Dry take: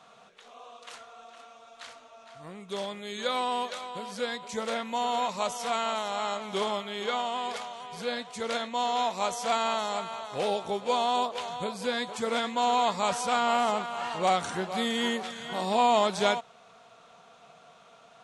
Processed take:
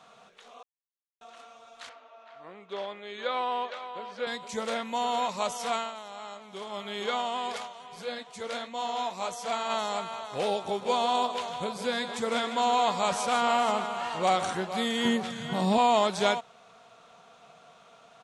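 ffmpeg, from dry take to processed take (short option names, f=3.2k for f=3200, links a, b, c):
-filter_complex "[0:a]asettb=1/sr,asplit=3[a][b][c];[a]atrim=end=1.894[d];[b]atrim=start=1.89:end=4.27,asetpts=PTS-STARTPTS,afade=t=in:d=0.004:c=qsin,afade=t=out:st=2.376:d=0.004:c=qsin,highpass=340,lowpass=2.9k[e];[c]atrim=start=4.266[f];[d][e]acrossfade=d=0.004:c1=hsin:c2=qsin[g];[g][f]acrossfade=d=0.004:c1=qsin:c2=hsin,asplit=3[h][i][j];[h]afade=t=out:st=7.66:d=0.02[k];[i]flanger=delay=5.6:depth=5.9:regen=-48:speed=1.6:shape=sinusoidal,afade=t=in:st=7.66:d=0.02,afade=t=out:st=9.69:d=0.02[l];[j]afade=t=in:st=9.69:d=0.02[m];[k][l][m]amix=inputs=3:normalize=0,asplit=3[n][o][p];[n]afade=t=out:st=10.66:d=0.02[q];[o]aecho=1:1:154:0.316,afade=t=in:st=10.66:d=0.02,afade=t=out:st=14.53:d=0.02[r];[p]afade=t=in:st=14.53:d=0.02[s];[q][r][s]amix=inputs=3:normalize=0,asettb=1/sr,asplit=3[t][u][v];[t]atrim=end=15.054[w];[u]atrim=start=15.05:end=15.78,asetpts=PTS-STARTPTS,afade=t=in:d=0.004:c=qsin,afade=t=out:st=0.726:d=0.004:c=qsin,equalizer=f=140:t=o:w=1.3:g=15[x];[v]atrim=start=15.776[y];[w][x]acrossfade=d=0.004:c1=hsin:c2=qsin[z];[z][y]acrossfade=d=0.004:c1=qsin:c2=hsin,asplit=5[aa][ab][ac][ad][ae];[aa]atrim=end=0.63,asetpts=PTS-STARTPTS,afade=t=out:st=0.626:d=0.004:c=hsin[af];[ab]atrim=start=0.63:end=1.21,asetpts=PTS-STARTPTS,volume=0[ag];[ac]atrim=start=1.21:end=5.92,asetpts=PTS-STARTPTS,afade=t=in:d=0.004:c=hsin,afade=t=out:st=4.53:d=0.18:silence=0.298538[ah];[ad]atrim=start=5.92:end=6.69,asetpts=PTS-STARTPTS,volume=-10.5dB[ai];[ae]atrim=start=6.69,asetpts=PTS-STARTPTS,afade=t=in:d=0.18:silence=0.298538[aj];[af][ag][ah][ai][aj]concat=n=5:v=0:a=1"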